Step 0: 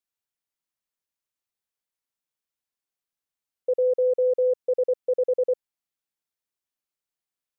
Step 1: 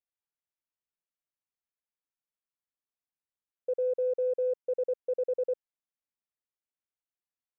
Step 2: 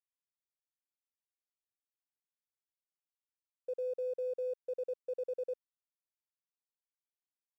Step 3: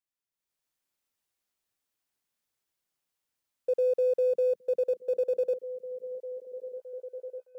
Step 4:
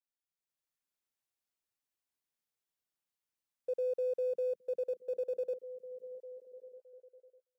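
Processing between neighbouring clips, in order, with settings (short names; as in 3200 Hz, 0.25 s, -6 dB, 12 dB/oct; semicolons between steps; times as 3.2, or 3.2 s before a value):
Wiener smoothing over 9 samples; gain -7 dB
crossover distortion -57 dBFS; gain -7.5 dB
AGC gain up to 11 dB; delay with a stepping band-pass 0.616 s, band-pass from 160 Hz, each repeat 0.7 oct, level -7.5 dB
ending faded out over 1.57 s; gain -8 dB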